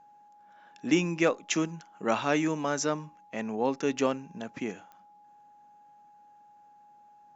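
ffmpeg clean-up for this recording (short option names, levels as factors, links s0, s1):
-af "adeclick=t=4,bandreject=f=830:w=30"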